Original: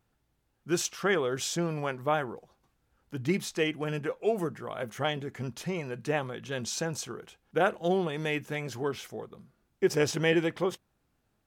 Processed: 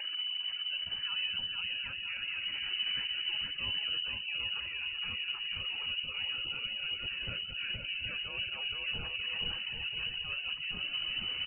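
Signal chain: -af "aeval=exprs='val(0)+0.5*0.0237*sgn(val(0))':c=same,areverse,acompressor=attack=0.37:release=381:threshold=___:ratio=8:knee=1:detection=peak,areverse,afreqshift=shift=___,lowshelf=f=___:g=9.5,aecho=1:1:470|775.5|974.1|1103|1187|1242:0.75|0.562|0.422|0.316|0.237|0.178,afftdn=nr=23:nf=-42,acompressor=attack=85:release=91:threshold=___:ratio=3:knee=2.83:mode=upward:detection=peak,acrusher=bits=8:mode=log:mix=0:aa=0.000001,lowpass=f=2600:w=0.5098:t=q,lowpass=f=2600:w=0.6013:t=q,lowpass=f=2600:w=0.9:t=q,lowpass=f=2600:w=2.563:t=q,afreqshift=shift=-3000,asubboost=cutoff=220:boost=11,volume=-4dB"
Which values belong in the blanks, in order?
-33dB, -44, 110, -48dB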